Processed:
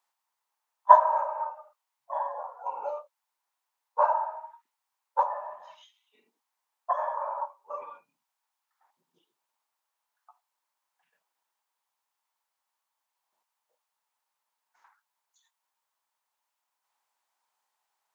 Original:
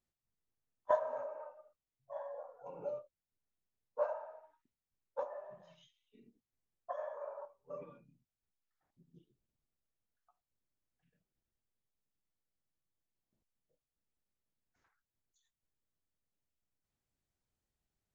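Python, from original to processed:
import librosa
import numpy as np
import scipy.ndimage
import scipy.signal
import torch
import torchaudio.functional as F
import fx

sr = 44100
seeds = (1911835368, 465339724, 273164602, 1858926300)

y = fx.highpass_res(x, sr, hz=920.0, q=4.9)
y = y * 10.0 ** (9.0 / 20.0)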